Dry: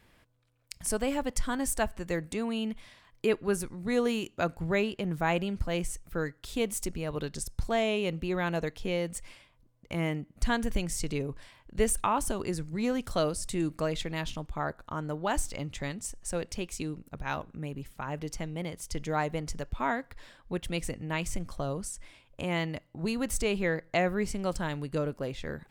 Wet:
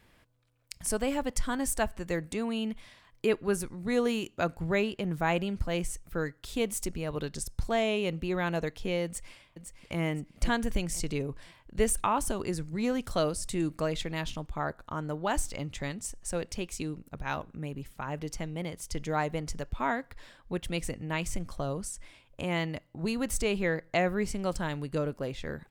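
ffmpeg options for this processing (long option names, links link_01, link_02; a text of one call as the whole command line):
ffmpeg -i in.wav -filter_complex "[0:a]asplit=2[link_01][link_02];[link_02]afade=type=in:start_time=9.05:duration=0.01,afade=type=out:start_time=9.98:duration=0.01,aecho=0:1:510|1020|1530|2040:0.446684|0.134005|0.0402015|0.0120605[link_03];[link_01][link_03]amix=inputs=2:normalize=0" out.wav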